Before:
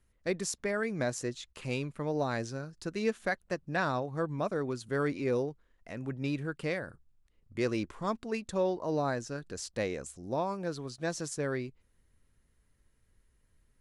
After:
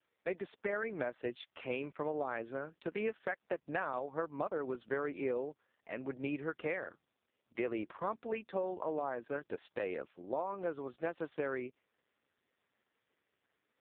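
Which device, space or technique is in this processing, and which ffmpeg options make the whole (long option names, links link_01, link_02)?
voicemail: -af "highpass=370,lowpass=3300,acompressor=threshold=-36dB:ratio=8,volume=4.5dB" -ar 8000 -c:a libopencore_amrnb -b:a 4750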